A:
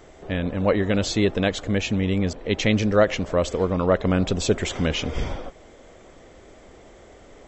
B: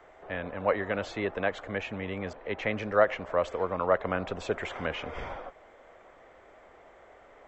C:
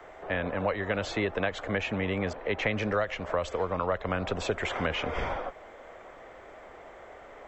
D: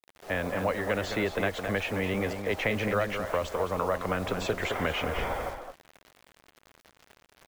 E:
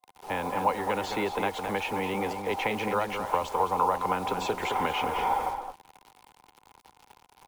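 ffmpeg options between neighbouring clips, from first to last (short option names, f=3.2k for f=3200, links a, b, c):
-filter_complex "[0:a]acrossover=split=570 2300:gain=0.158 1 0.112[a][b][c];[a][b][c]amix=inputs=3:normalize=0,acrossover=split=200|2700[d][e][f];[f]alimiter=level_in=13dB:limit=-24dB:level=0:latency=1:release=158,volume=-13dB[g];[d][e][g]amix=inputs=3:normalize=0"
-filter_complex "[0:a]acrossover=split=120|3000[a][b][c];[b]acompressor=threshold=-32dB:ratio=10[d];[a][d][c]amix=inputs=3:normalize=0,volume=6.5dB"
-filter_complex "[0:a]agate=range=-8dB:threshold=-39dB:ratio=16:detection=peak,acrusher=bits=7:mix=0:aa=0.000001,asplit=2[a][b];[b]adelay=215.7,volume=-7dB,highshelf=f=4k:g=-4.85[c];[a][c]amix=inputs=2:normalize=0"
-filter_complex "[0:a]superequalizer=8b=0.631:9b=3.55:11b=0.562:16b=1.41,acrossover=split=180|1400|2400[a][b][c][d];[a]acompressor=threshold=-46dB:ratio=6[e];[e][b][c][d]amix=inputs=4:normalize=0"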